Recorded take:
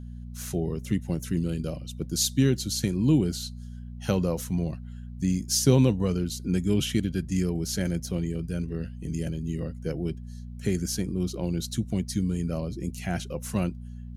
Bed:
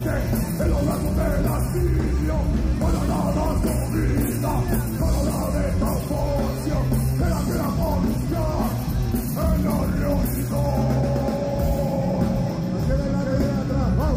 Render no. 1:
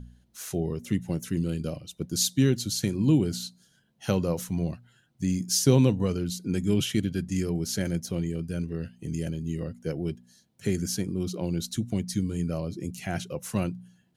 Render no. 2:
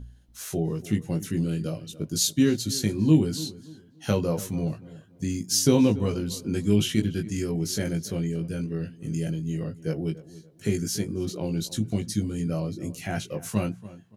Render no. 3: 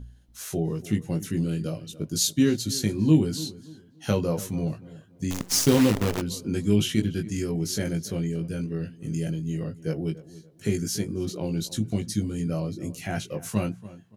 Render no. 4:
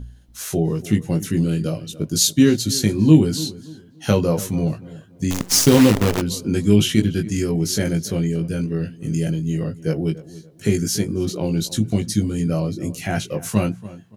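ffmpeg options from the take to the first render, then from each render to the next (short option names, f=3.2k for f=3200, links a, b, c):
-af "bandreject=f=60:t=h:w=4,bandreject=f=120:t=h:w=4,bandreject=f=180:t=h:w=4,bandreject=f=240:t=h:w=4"
-filter_complex "[0:a]asplit=2[a][b];[b]adelay=19,volume=-4dB[c];[a][c]amix=inputs=2:normalize=0,asplit=2[d][e];[e]adelay=286,lowpass=f=1.9k:p=1,volume=-17dB,asplit=2[f][g];[g]adelay=286,lowpass=f=1.9k:p=1,volume=0.31,asplit=2[h][i];[i]adelay=286,lowpass=f=1.9k:p=1,volume=0.31[j];[d][f][h][j]amix=inputs=4:normalize=0"
-filter_complex "[0:a]asplit=3[a][b][c];[a]afade=t=out:st=5.3:d=0.02[d];[b]acrusher=bits=5:dc=4:mix=0:aa=0.000001,afade=t=in:st=5.3:d=0.02,afade=t=out:st=6.2:d=0.02[e];[c]afade=t=in:st=6.2:d=0.02[f];[d][e][f]amix=inputs=3:normalize=0"
-af "volume=7dB,alimiter=limit=-1dB:level=0:latency=1"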